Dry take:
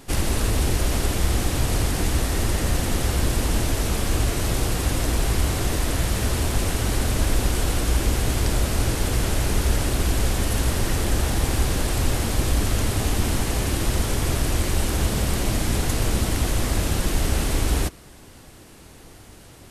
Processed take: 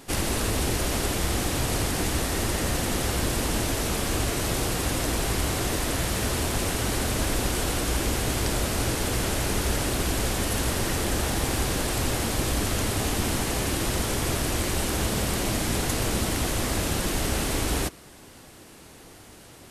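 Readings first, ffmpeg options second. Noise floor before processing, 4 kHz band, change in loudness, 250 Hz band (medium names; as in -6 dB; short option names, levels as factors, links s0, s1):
-46 dBFS, 0.0 dB, -2.5 dB, -1.5 dB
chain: -af "lowshelf=f=100:g=-10"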